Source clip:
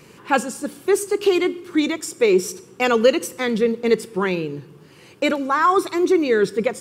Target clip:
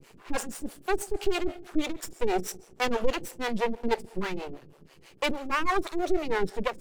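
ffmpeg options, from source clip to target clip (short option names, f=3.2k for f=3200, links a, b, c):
-filter_complex "[0:a]aeval=exprs='max(val(0),0)':c=same,acrossover=split=420[a][b];[a]aeval=exprs='val(0)*(1-1/2+1/2*cos(2*PI*6.2*n/s))':c=same[c];[b]aeval=exprs='val(0)*(1-1/2-1/2*cos(2*PI*6.2*n/s))':c=same[d];[c][d]amix=inputs=2:normalize=0"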